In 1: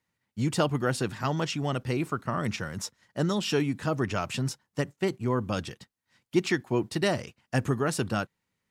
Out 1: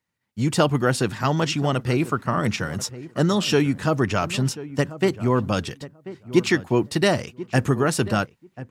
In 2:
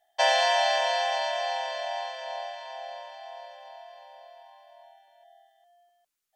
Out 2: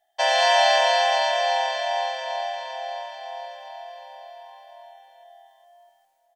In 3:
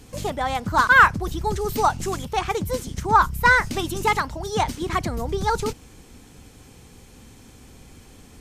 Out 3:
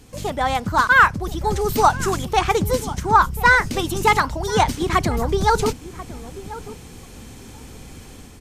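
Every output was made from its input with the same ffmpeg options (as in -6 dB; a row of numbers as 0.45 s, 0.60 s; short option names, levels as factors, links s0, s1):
-filter_complex "[0:a]dynaudnorm=f=150:g=5:m=2.51,asplit=2[s0][s1];[s1]adelay=1038,lowpass=f=1200:p=1,volume=0.178,asplit=2[s2][s3];[s3]adelay=1038,lowpass=f=1200:p=1,volume=0.16[s4];[s2][s4]amix=inputs=2:normalize=0[s5];[s0][s5]amix=inputs=2:normalize=0,volume=0.891"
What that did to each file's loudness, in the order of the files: +7.0 LU, +5.5 LU, +2.5 LU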